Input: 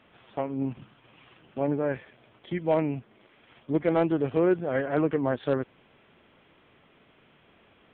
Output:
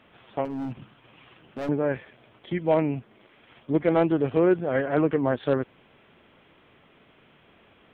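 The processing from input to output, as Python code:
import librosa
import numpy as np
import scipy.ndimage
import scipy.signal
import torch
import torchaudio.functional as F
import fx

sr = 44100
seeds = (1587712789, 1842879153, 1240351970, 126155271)

y = fx.overload_stage(x, sr, gain_db=31.0, at=(0.45, 1.69))
y = y * 10.0 ** (2.5 / 20.0)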